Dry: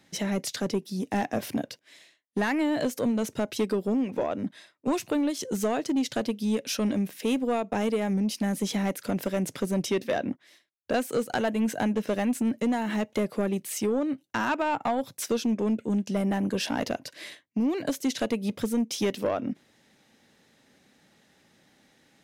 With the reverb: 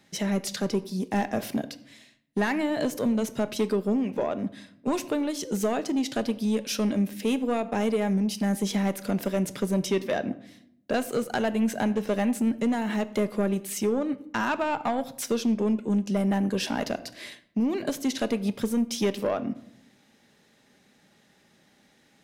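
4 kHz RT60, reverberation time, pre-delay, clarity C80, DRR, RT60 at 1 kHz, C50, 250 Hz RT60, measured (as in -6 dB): 0.45 s, 0.75 s, 5 ms, 19.0 dB, 11.5 dB, 0.70 s, 17.0 dB, 1.0 s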